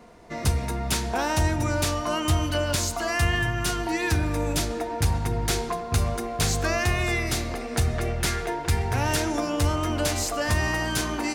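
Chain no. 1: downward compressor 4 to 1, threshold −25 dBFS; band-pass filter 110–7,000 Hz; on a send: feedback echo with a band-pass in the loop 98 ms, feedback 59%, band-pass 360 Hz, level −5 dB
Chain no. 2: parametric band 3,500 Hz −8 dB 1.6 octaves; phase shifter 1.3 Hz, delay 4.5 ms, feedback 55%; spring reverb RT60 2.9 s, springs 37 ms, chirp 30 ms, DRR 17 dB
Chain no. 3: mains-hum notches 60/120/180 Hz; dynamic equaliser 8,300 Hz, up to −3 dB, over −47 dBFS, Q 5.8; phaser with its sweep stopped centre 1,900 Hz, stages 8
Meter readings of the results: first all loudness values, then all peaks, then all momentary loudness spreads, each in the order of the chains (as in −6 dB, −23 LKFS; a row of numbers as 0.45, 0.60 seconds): −30.0, −25.0, −28.0 LKFS; −15.5, −6.0, −13.0 dBFS; 4, 5, 4 LU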